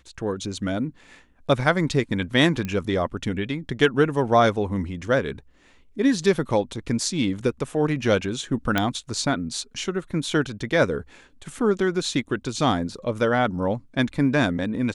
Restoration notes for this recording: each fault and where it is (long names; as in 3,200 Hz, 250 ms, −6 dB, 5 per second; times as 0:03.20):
0:02.65: click −16 dBFS
0:08.78: click −7 dBFS